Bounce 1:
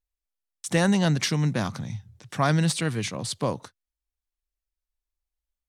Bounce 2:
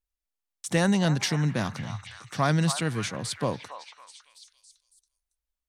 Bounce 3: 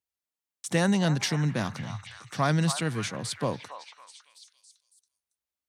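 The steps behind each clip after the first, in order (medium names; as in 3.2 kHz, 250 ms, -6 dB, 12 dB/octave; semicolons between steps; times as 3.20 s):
repeats whose band climbs or falls 278 ms, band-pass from 1 kHz, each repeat 0.7 oct, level -7 dB; trim -1.5 dB
high-pass 85 Hz 24 dB/octave; trim -1 dB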